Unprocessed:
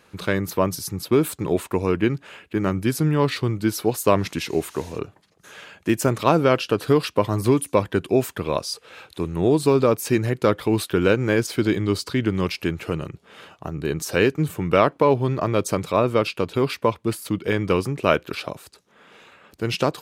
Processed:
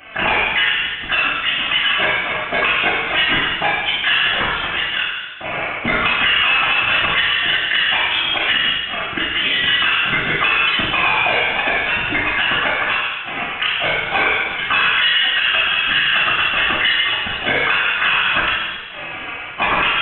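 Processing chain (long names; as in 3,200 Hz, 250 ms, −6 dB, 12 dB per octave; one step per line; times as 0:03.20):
high-pass filter 870 Hz 24 dB per octave
high-shelf EQ 2,700 Hz −3 dB
downward compressor 2 to 1, threshold −43 dBFS, peak gain reduction 14.5 dB
pitch-shifted copies added +12 semitones −1 dB
transient designer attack +8 dB, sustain −11 dB
flanger swept by the level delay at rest 4.8 ms, full sweep at −14.5 dBFS
rectangular room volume 1,800 cubic metres, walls mixed, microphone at 4.4 metres
voice inversion scrambler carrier 3,900 Hz
boost into a limiter +23 dB
level −5.5 dB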